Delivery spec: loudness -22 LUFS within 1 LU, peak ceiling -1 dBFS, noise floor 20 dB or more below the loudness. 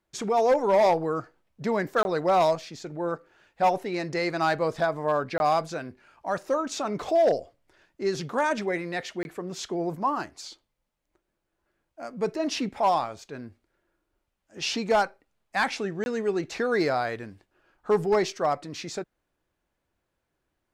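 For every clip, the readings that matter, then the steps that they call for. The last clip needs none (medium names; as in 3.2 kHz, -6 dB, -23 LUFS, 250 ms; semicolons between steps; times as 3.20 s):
clipped samples 0.6%; clipping level -15.5 dBFS; dropouts 4; longest dropout 21 ms; loudness -27.0 LUFS; peak level -15.5 dBFS; loudness target -22.0 LUFS
-> clip repair -15.5 dBFS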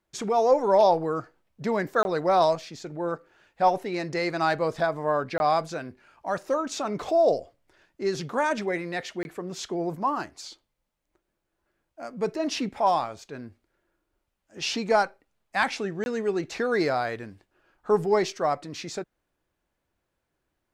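clipped samples 0.0%; dropouts 4; longest dropout 21 ms
-> interpolate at 2.03/5.38/9.23/16.04 s, 21 ms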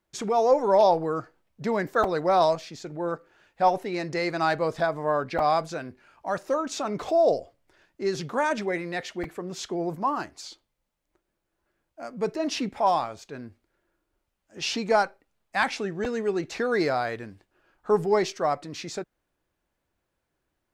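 dropouts 0; loudness -26.5 LUFS; peak level -8.5 dBFS; loudness target -22.0 LUFS
-> trim +4.5 dB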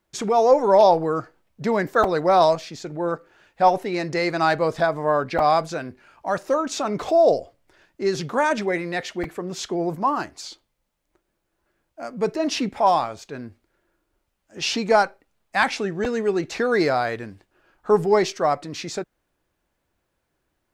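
loudness -22.0 LUFS; peak level -4.0 dBFS; noise floor -75 dBFS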